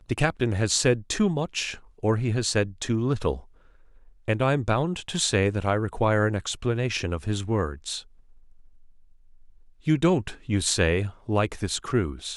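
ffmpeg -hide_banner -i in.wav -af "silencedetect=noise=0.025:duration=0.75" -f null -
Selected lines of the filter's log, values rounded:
silence_start: 3.37
silence_end: 4.28 | silence_duration: 0.91
silence_start: 8.00
silence_end: 9.87 | silence_duration: 1.87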